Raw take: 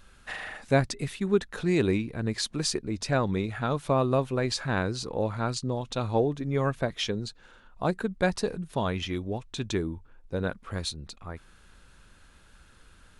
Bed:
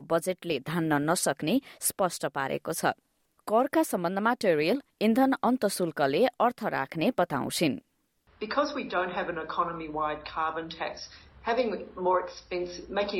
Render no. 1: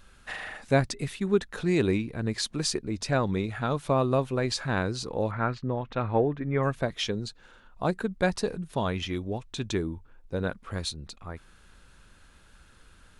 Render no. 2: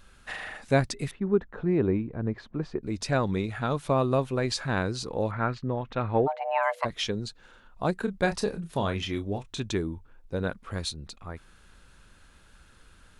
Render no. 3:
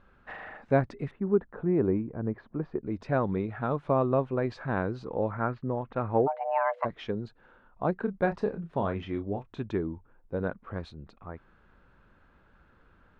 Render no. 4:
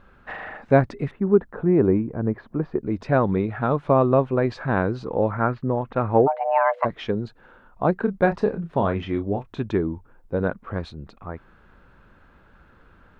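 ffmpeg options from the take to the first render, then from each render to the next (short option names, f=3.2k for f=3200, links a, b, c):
-filter_complex "[0:a]asettb=1/sr,asplit=3[a][b][c];[a]atrim=end=5.314[d];[b]atrim=start=5.31:end=6.63,asetpts=PTS-STARTPTS,afade=t=in:d=0.004:c=qsin,afade=t=out:st=1.316:d=0.004:c=qsin,lowpass=f=1.9k:t=q:w=1.9[e];[c]atrim=start=6.626[f];[d][e]acrossfade=d=0.004:c1=hsin:c2=qsin[g];[g][f]acrossfade=d=0.004:c1=qsin:c2=hsin"
-filter_complex "[0:a]asettb=1/sr,asplit=3[a][b][c];[a]atrim=end=1.114[d];[b]atrim=start=1.11:end=2.83,asetpts=PTS-STARTPTS,afade=t=in:d=0.004:c=qsin,afade=t=out:st=1.716:d=0.004:c=qsin,lowpass=1.2k[e];[c]atrim=start=2.826[f];[d][e]acrossfade=d=0.004:c1=hsin:c2=qsin[g];[g][f]acrossfade=d=0.004:c1=qsin:c2=hsin,asplit=3[h][i][j];[h]afade=t=out:st=6.26:d=0.02[k];[i]afreqshift=470,afade=t=in:st=6.26:d=0.02,afade=t=out:st=6.84:d=0.02[l];[j]afade=t=in:st=6.84:d=0.02[m];[k][l][m]amix=inputs=3:normalize=0,asettb=1/sr,asplit=3[n][o][p];[n]atrim=end=8.004[q];[o]atrim=start=8:end=9.6,asetpts=PTS-STARTPTS,afade=t=in:d=0.004:c=qsin,afade=t=out:st=1.596:d=0.004:c=qsin,asplit=2[r][s];[s]adelay=30,volume=-9dB[t];[r][t]amix=inputs=2:normalize=0,atrim=end_sample=70560[u];[p]atrim=start=9.596[v];[q][u]acrossfade=d=0.004:c1=hsin:c2=qsin[w];[w][v]acrossfade=d=0.004:c1=qsin:c2=hsin"
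-af "lowpass=1.4k,lowshelf=f=88:g=-8.5"
-af "volume=7.5dB"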